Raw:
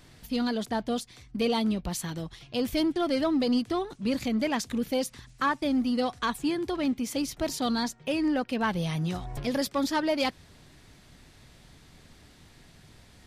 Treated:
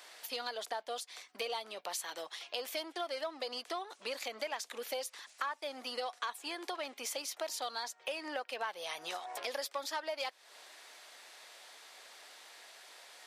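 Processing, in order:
high-pass filter 550 Hz 24 dB per octave
downward compressor 4 to 1, threshold −42 dBFS, peak gain reduction 16.5 dB
level +4.5 dB

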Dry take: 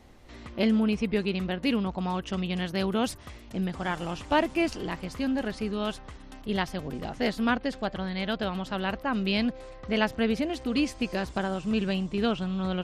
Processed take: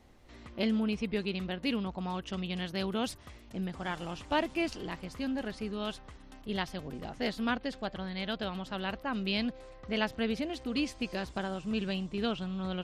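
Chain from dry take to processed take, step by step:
dynamic equaliser 3,700 Hz, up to +4 dB, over −44 dBFS, Q 1.3
level −6 dB

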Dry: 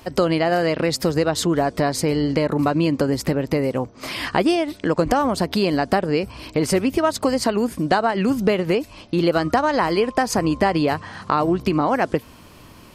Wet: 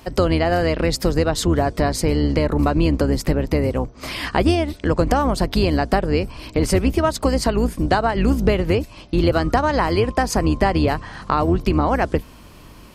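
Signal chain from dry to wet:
sub-octave generator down 2 octaves, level +1 dB

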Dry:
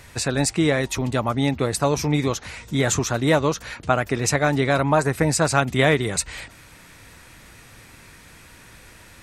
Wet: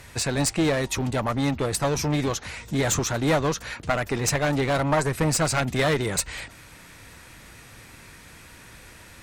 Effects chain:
surface crackle 40 per second −49 dBFS
asymmetric clip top −21.5 dBFS

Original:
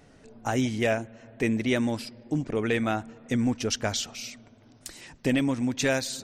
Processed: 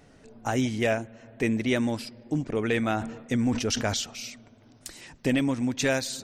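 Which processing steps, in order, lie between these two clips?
0:02.74–0:03.94: level that may fall only so fast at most 72 dB per second

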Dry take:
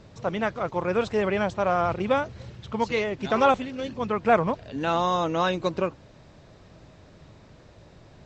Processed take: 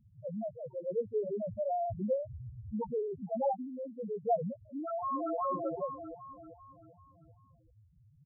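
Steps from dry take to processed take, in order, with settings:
0:01.48–0:03.23: low-shelf EQ 140 Hz +10.5 dB
spectral peaks only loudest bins 1
0:04.63–0:05.36: delay throw 390 ms, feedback 45%, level −0.5 dB
level −2 dB

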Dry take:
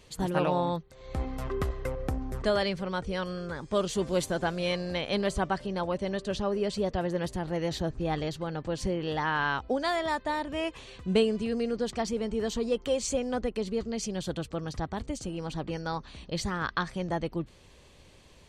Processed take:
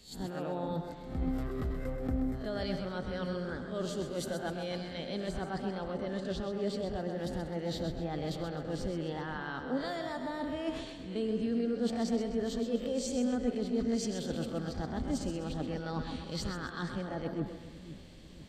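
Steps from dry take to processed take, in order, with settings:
peak hold with a rise ahead of every peak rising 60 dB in 0.32 s
reversed playback
downward compressor 10 to 1, threshold −37 dBFS, peak gain reduction 19 dB
reversed playback
thirty-one-band graphic EQ 250 Hz +9 dB, 1,000 Hz −8 dB, 2,500 Hz −5 dB, 6,300 Hz −6 dB, 10,000 Hz −10 dB
echo through a band-pass that steps 160 ms, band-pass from 630 Hz, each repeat 0.7 octaves, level −10 dB
dynamic equaliser 2,400 Hz, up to −4 dB, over −53 dBFS, Q 1.4
on a send: echo with a time of its own for lows and highs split 320 Hz, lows 496 ms, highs 129 ms, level −7 dB
on the sum: multiband upward and downward expander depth 40%
level +4 dB

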